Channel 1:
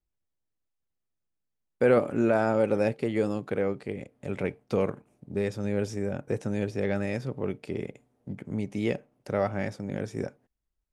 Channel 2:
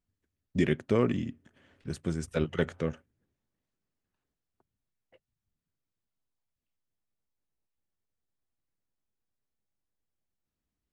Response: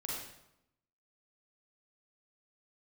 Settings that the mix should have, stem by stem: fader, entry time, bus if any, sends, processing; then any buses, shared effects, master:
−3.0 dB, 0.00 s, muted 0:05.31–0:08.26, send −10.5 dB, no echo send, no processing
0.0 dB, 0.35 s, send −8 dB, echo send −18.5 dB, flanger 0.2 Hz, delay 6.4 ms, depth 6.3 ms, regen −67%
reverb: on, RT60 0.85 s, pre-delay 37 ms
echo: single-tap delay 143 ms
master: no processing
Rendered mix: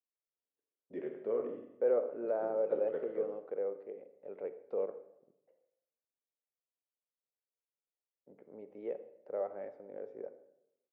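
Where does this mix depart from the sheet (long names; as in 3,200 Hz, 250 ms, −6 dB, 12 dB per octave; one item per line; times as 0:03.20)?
stem 2: send −8 dB → −1 dB
master: extra four-pole ladder band-pass 570 Hz, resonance 50%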